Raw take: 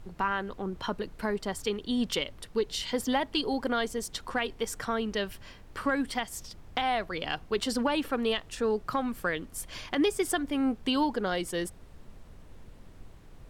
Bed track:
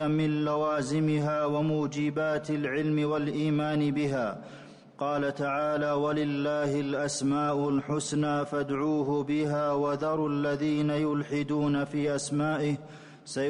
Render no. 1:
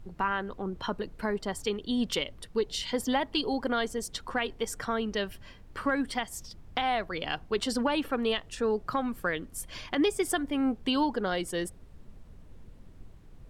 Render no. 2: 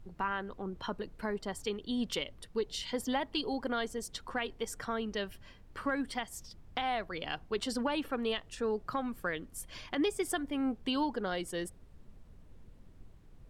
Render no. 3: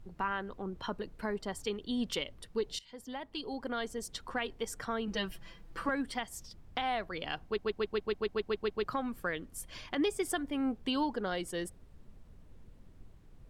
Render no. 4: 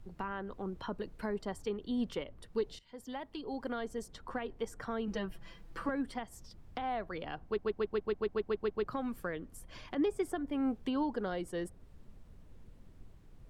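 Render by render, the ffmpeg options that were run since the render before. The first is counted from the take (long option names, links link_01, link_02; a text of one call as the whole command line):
ffmpeg -i in.wav -af "afftdn=noise_reduction=6:noise_floor=-51" out.wav
ffmpeg -i in.wav -af "volume=-5dB" out.wav
ffmpeg -i in.wav -filter_complex "[0:a]asettb=1/sr,asplit=3[link_01][link_02][link_03];[link_01]atrim=end=5.074[link_04];[link_02]atrim=start=5.07:end=5.89,asetpts=PTS-STARTPTS,afade=type=in:duration=0.004:curve=qsin,afade=type=out:start_time=0.816:duration=0.004:curve=qsin,aecho=1:1:6:0.98,atrim=end_sample=36162[link_05];[link_03]atrim=start=5.886[link_06];[link_04][link_05]acrossfade=duration=0.004:curve1=hsin:curve2=qsin[link_07];[link_07][link_06]acrossfade=duration=0.004:curve1=qsin:curve2=hsin,asplit=12[link_08][link_09][link_10][link_11][link_12][link_13][link_14][link_15][link_16][link_17][link_18][link_19];[link_08]atrim=end=2.79,asetpts=PTS-STARTPTS,afade=type=out:start_time=2.786:duration=0.004:curve=hsin:silence=0.1[link_20];[link_09]atrim=start=2.79:end=7.582,asetpts=PTS-STARTPTS,afade=type=in:duration=1.31:silence=0.1[link_21];[link_10]atrim=start=7.438:end=7.582[link_22];[link_11]atrim=start=7.438:end=7.582[link_23];[link_12]atrim=start=7.438:end=7.582[link_24];[link_13]atrim=start=7.438:end=7.582[link_25];[link_14]atrim=start=7.438:end=7.582[link_26];[link_15]atrim=start=7.438:end=7.582[link_27];[link_16]atrim=start=7.438:end=7.582[link_28];[link_17]atrim=start=7.438:end=7.582[link_29];[link_18]atrim=start=7.438:end=7.582[link_30];[link_19]atrim=start=8.838[link_31];[link_20][link_21]concat=n=2:v=0:a=1[link_32];[link_32][link_22]acrossfade=duration=0.004:curve1=hsin:curve2=hsin[link_33];[link_33][link_23]acrossfade=duration=0.004:curve1=hsin:curve2=hsin[link_34];[link_34][link_24]acrossfade=duration=0.004:curve1=hsin:curve2=hsin[link_35];[link_35][link_25]acrossfade=duration=0.004:curve1=hsin:curve2=hsin[link_36];[link_36][link_26]acrossfade=duration=0.004:curve1=hsin:curve2=hsin[link_37];[link_37][link_27]acrossfade=duration=0.004:curve1=hsin:curve2=hsin[link_38];[link_38][link_28]acrossfade=duration=0.004:curve1=hsin:curve2=hsin[link_39];[link_39][link_29]acrossfade=duration=0.004:curve1=hsin:curve2=hsin[link_40];[link_40][link_30]acrossfade=duration=0.004:curve1=hsin:curve2=hsin[link_41];[link_41][link_31]acrossfade=duration=0.004:curve1=hsin:curve2=hsin" out.wav
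ffmpeg -i in.wav -filter_complex "[0:a]acrossover=split=640|1700[link_01][link_02][link_03];[link_02]alimiter=level_in=10.5dB:limit=-24dB:level=0:latency=1:release=176,volume=-10.5dB[link_04];[link_03]acompressor=threshold=-52dB:ratio=6[link_05];[link_01][link_04][link_05]amix=inputs=3:normalize=0" out.wav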